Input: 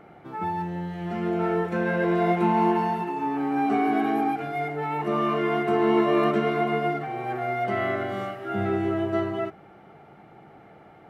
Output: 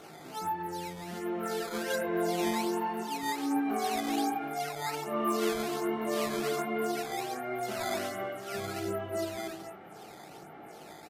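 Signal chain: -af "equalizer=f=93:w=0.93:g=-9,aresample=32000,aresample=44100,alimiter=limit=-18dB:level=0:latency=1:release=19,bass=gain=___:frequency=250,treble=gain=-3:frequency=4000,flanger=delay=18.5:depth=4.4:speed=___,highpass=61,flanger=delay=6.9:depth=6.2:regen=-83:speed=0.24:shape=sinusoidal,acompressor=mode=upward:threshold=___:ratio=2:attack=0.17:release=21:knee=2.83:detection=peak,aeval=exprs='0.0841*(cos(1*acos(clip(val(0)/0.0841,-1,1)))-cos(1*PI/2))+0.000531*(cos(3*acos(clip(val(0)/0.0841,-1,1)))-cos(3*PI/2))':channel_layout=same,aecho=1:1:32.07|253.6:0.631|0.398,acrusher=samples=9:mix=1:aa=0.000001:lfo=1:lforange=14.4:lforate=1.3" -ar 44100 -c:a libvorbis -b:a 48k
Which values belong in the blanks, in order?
0, 0.65, -36dB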